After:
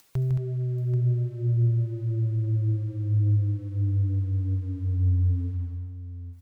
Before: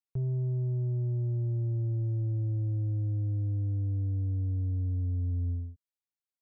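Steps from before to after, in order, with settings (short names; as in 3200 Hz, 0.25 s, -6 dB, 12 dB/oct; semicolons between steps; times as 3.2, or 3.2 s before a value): reverb removal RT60 1 s; upward compressor, threshold -40 dBFS; in parallel at +2 dB: limiter -35 dBFS, peak gain reduction 7.5 dB; on the sum: crossover distortion -58.5 dBFS; on a send: tapped delay 0.154/0.221/0.784 s -5.5/-7/-10.5 dB; on the sum: gain +2 dB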